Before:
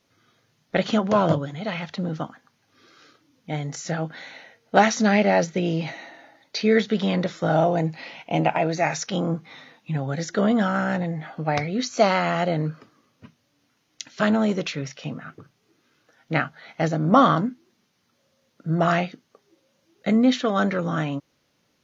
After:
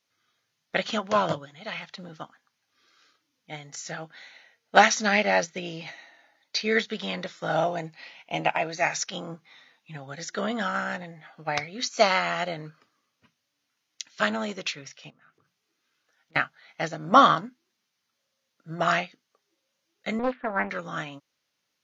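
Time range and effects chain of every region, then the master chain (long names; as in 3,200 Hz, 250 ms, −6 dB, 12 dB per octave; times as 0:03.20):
0:15.10–0:16.36: hard clipping −16.5 dBFS + mains-hum notches 60/120/180 Hz + downward compressor 3 to 1, threshold −47 dBFS
0:20.19–0:20.70: low-pass filter 1,600 Hz 24 dB per octave + highs frequency-modulated by the lows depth 0.89 ms
whole clip: tilt shelving filter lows −7 dB, about 720 Hz; expander for the loud parts 1.5 to 1, over −38 dBFS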